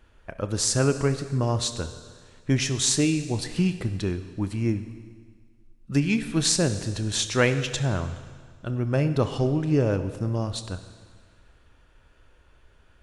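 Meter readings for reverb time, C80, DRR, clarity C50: 1.7 s, 12.5 dB, 9.5 dB, 11.0 dB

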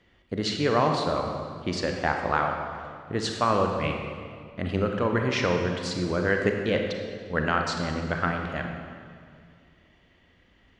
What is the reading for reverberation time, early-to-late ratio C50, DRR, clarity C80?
2.2 s, 3.5 dB, 3.0 dB, 5.0 dB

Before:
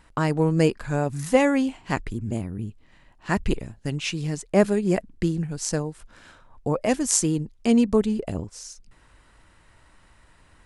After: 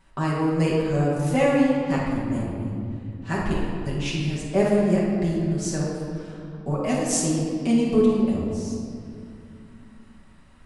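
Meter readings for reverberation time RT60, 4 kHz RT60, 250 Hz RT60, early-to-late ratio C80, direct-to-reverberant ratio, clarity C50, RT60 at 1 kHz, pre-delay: 2.5 s, 1.5 s, 3.6 s, 1.5 dB, -7.0 dB, -1.0 dB, 2.3 s, 5 ms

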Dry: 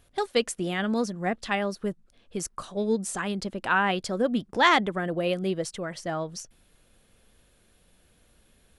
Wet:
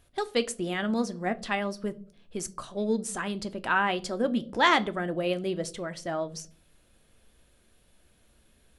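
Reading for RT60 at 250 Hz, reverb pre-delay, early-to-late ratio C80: 0.65 s, 3 ms, 25.5 dB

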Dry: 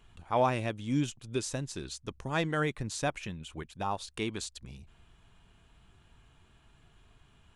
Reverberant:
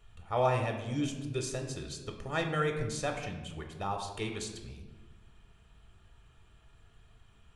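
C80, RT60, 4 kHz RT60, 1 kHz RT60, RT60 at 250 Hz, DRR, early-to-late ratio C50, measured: 8.5 dB, 1.3 s, 0.75 s, 1.1 s, 1.7 s, 3.0 dB, 6.5 dB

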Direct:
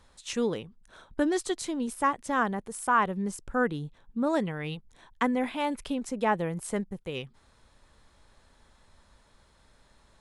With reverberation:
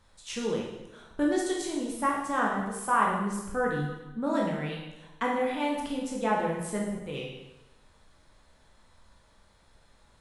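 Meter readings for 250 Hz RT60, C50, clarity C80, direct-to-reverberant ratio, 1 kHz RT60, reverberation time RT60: 1.0 s, 2.0 dB, 5.0 dB, -3.0 dB, 1.0 s, 1.0 s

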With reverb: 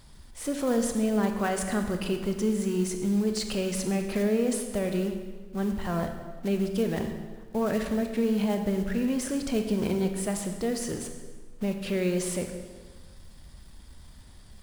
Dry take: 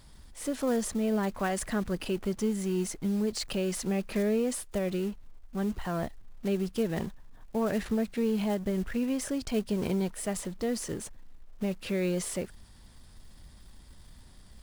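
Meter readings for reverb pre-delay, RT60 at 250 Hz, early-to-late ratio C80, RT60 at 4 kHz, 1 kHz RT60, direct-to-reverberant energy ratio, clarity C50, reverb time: 25 ms, 1.6 s, 8.0 dB, 1.2 s, 1.4 s, 5.5 dB, 6.5 dB, 1.4 s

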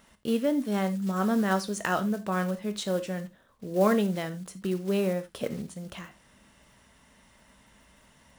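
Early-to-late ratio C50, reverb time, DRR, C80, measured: 15.5 dB, no single decay rate, 9.5 dB, 22.5 dB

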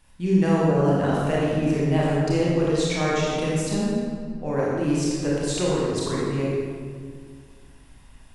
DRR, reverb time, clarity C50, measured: -7.0 dB, 2.0 s, -3.0 dB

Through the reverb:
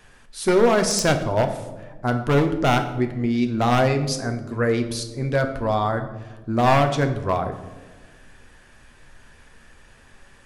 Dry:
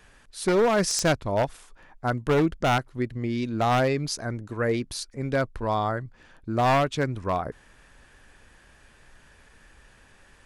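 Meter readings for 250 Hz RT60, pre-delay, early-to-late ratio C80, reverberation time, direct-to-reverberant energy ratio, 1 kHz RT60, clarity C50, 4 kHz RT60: 1.9 s, 8 ms, 12.5 dB, 1.3 s, 5.5 dB, 1.0 s, 10.0 dB, 0.70 s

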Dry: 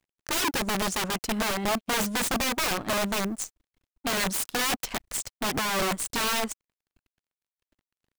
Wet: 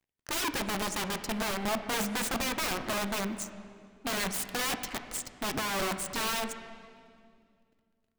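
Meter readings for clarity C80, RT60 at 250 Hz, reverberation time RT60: 10.5 dB, 2.8 s, 2.2 s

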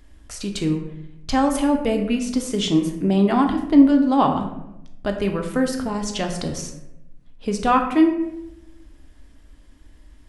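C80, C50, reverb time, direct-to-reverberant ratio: 9.5 dB, 7.0 dB, 0.85 s, 3.0 dB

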